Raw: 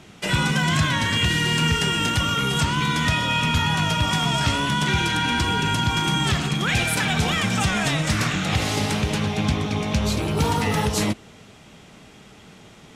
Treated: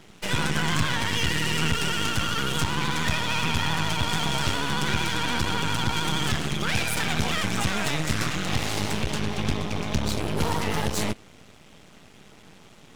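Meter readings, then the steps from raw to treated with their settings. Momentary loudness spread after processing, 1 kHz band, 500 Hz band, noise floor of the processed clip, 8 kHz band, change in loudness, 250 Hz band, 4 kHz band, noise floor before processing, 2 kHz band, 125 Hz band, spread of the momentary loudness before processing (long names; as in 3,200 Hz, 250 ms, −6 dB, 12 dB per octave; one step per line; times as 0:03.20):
3 LU, −4.5 dB, −3.5 dB, −51 dBFS, −3.0 dB, −4.5 dB, −5.5 dB, −4.0 dB, −47 dBFS, −4.0 dB, −6.0 dB, 3 LU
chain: pitch vibrato 13 Hz 55 cents
half-wave rectification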